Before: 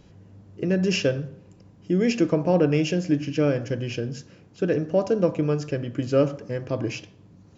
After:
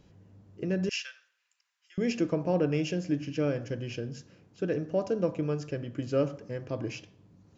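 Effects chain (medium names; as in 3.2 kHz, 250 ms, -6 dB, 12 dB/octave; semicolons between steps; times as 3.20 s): 0.89–1.98 s: high-pass 1.5 kHz 24 dB/octave; trim -7 dB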